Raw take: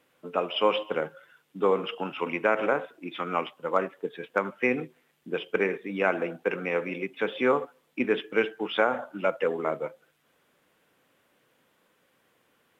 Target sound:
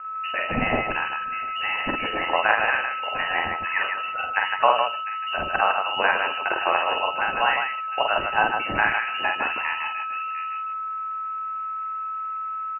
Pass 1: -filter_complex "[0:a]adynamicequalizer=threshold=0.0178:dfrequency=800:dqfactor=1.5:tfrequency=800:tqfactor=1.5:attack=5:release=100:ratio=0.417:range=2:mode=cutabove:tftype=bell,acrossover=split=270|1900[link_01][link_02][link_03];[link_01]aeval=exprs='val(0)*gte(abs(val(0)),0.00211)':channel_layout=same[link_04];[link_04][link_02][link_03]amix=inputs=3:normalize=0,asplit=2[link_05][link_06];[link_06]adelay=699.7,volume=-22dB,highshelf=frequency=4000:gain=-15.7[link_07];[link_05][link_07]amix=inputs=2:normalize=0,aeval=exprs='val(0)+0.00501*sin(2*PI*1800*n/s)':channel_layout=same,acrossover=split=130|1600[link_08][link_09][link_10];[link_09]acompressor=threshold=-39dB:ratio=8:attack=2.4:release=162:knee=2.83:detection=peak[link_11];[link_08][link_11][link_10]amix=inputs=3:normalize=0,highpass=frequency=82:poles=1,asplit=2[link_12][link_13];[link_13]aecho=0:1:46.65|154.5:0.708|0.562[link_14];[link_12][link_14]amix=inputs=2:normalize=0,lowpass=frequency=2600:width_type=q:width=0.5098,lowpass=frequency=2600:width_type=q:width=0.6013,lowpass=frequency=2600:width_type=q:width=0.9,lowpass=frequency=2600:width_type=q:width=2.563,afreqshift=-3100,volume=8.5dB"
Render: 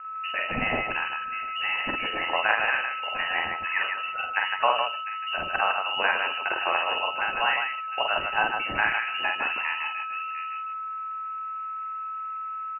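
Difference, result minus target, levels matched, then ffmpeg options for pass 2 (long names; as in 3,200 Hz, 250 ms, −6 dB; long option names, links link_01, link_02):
4,000 Hz band +2.5 dB
-filter_complex "[0:a]adynamicequalizer=threshold=0.0178:dfrequency=800:dqfactor=1.5:tfrequency=800:tqfactor=1.5:attack=5:release=100:ratio=0.417:range=2:mode=cutabove:tftype=bell,acrossover=split=270|1900[link_01][link_02][link_03];[link_01]aeval=exprs='val(0)*gte(abs(val(0)),0.00211)':channel_layout=same[link_04];[link_04][link_02][link_03]amix=inputs=3:normalize=0,asplit=2[link_05][link_06];[link_06]adelay=699.7,volume=-22dB,highshelf=frequency=4000:gain=-15.7[link_07];[link_05][link_07]amix=inputs=2:normalize=0,aeval=exprs='val(0)+0.00501*sin(2*PI*1800*n/s)':channel_layout=same,acrossover=split=130|1600[link_08][link_09][link_10];[link_09]acompressor=threshold=-39dB:ratio=8:attack=2.4:release=162:knee=2.83:detection=peak[link_11];[link_08][link_11][link_10]amix=inputs=3:normalize=0,highpass=frequency=82:poles=1,highshelf=frequency=2400:gain=10,asplit=2[link_12][link_13];[link_13]aecho=0:1:46.65|154.5:0.708|0.562[link_14];[link_12][link_14]amix=inputs=2:normalize=0,lowpass=frequency=2600:width_type=q:width=0.5098,lowpass=frequency=2600:width_type=q:width=0.6013,lowpass=frequency=2600:width_type=q:width=0.9,lowpass=frequency=2600:width_type=q:width=2.563,afreqshift=-3100,volume=8.5dB"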